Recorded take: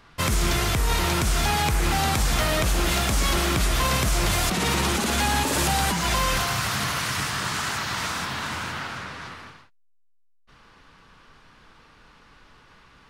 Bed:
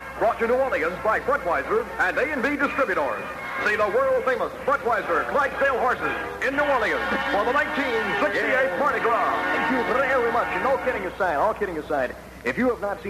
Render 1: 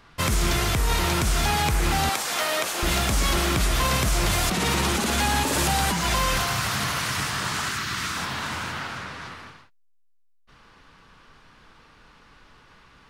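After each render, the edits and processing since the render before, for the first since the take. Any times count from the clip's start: 2.09–2.83 HPF 450 Hz; 7.68–8.17 band shelf 670 Hz -9 dB 1.2 oct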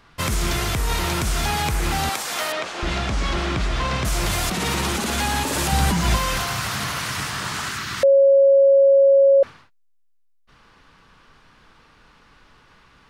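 2.52–4.05 air absorption 120 m; 5.72–6.17 low shelf 290 Hz +9.5 dB; 8.03–9.43 bleep 550 Hz -10 dBFS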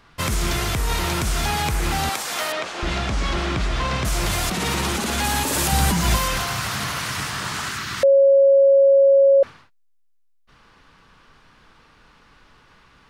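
5.24–6.28 high shelf 8400 Hz +7.5 dB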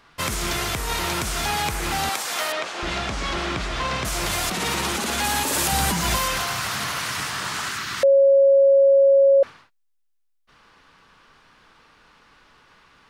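low shelf 210 Hz -8.5 dB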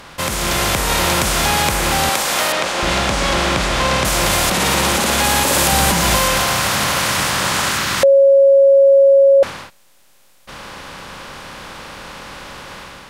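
per-bin compression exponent 0.6; AGC gain up to 5.5 dB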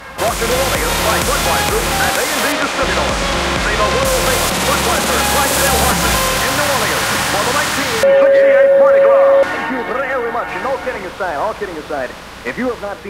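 add bed +3 dB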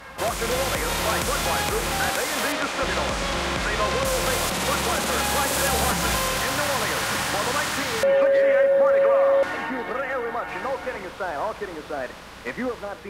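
gain -9 dB

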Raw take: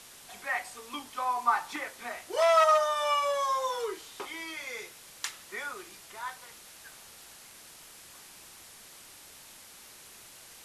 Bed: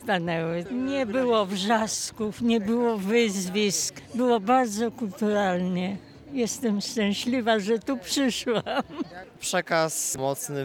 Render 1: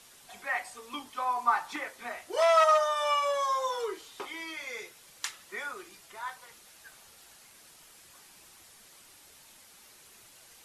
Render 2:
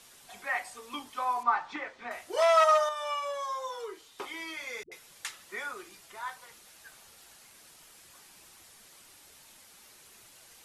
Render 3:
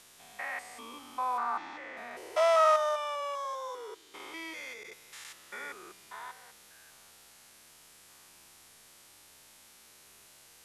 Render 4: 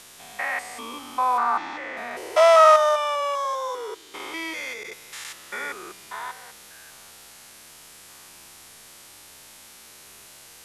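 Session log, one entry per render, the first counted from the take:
denoiser 6 dB, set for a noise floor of -52 dBFS
1.43–2.11 air absorption 150 m; 2.89–4.19 gain -6 dB; 4.83–5.25 dispersion highs, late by 86 ms, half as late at 330 Hz
stepped spectrum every 0.2 s
gain +10 dB

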